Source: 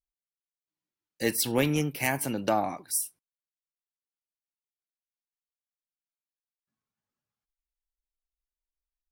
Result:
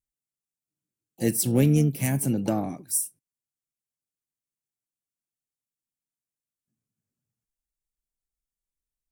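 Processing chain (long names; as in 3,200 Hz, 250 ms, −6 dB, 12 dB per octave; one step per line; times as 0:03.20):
octave-band graphic EQ 125/250/1,000/2,000/4,000/8,000 Hz +11/+5/−11/−4/−8/+6 dB
pitch-shifted copies added +7 semitones −16 dB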